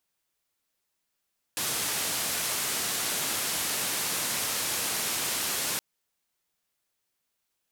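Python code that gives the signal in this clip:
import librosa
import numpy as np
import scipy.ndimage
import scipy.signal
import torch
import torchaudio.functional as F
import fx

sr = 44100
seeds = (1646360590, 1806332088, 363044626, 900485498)

y = fx.band_noise(sr, seeds[0], length_s=4.22, low_hz=96.0, high_hz=13000.0, level_db=-30.0)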